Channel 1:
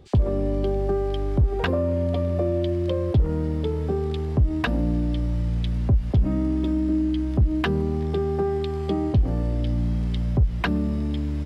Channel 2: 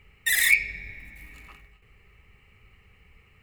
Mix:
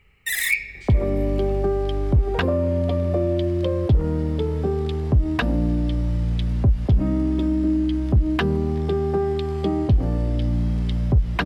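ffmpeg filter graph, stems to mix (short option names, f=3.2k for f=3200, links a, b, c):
-filter_complex "[0:a]adelay=750,volume=2dB[a];[1:a]volume=-2dB[b];[a][b]amix=inputs=2:normalize=0"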